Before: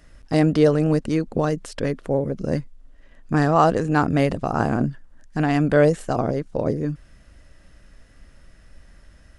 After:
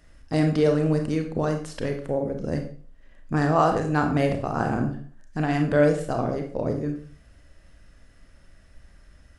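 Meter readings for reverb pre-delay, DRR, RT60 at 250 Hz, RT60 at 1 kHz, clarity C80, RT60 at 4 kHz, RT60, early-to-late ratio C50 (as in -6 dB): 28 ms, 4.0 dB, 0.45 s, 0.50 s, 12.0 dB, 0.40 s, 0.50 s, 7.5 dB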